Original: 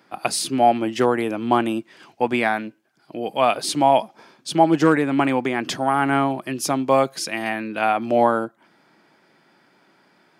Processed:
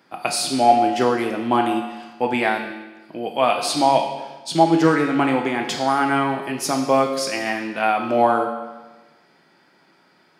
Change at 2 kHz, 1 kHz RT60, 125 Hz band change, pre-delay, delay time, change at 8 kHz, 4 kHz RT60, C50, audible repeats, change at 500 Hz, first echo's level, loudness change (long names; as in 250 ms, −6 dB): +1.0 dB, 1.2 s, −0.5 dB, 6 ms, no echo audible, +0.5 dB, 1.1 s, 6.0 dB, no echo audible, +0.5 dB, no echo audible, +1.0 dB